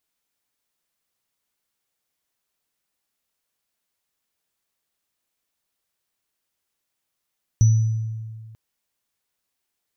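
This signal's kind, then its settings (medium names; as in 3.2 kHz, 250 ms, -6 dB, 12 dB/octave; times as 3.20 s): sine partials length 0.94 s, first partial 111 Hz, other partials 5.94 kHz, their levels -17 dB, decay 1.83 s, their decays 0.72 s, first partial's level -10 dB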